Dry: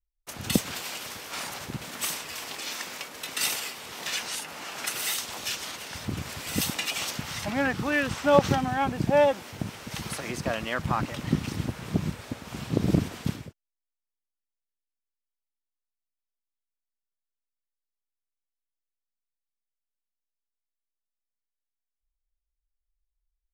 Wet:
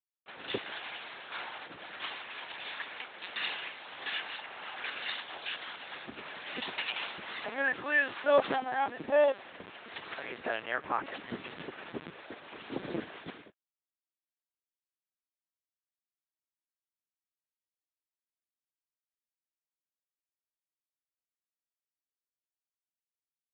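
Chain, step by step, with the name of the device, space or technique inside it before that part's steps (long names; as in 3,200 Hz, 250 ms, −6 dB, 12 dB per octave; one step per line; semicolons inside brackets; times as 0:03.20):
0:10.65–0:11.05: low-pass filter 2,700 Hz
talking toy (linear-prediction vocoder at 8 kHz pitch kept; high-pass filter 370 Hz 12 dB per octave; parametric band 1,700 Hz +4.5 dB 0.27 octaves)
level −3.5 dB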